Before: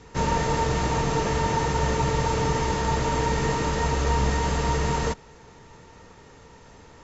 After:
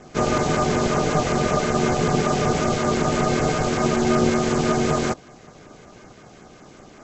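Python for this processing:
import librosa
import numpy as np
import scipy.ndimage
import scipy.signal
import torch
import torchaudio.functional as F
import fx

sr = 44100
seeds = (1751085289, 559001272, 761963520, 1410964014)

y = fx.filter_lfo_notch(x, sr, shape='saw_down', hz=5.3, low_hz=320.0, high_hz=4700.0, q=1.1)
y = y * np.sin(2.0 * np.pi * 300.0 * np.arange(len(y)) / sr)
y = y * librosa.db_to_amplitude(7.0)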